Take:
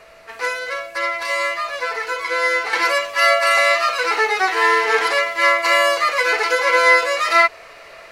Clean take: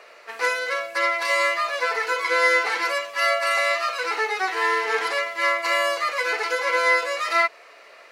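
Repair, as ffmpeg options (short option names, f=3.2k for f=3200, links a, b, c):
-af "bandreject=f=660:w=30,agate=range=-21dB:threshold=-32dB,asetnsamples=n=441:p=0,asendcmd='2.73 volume volume -6.5dB',volume=0dB"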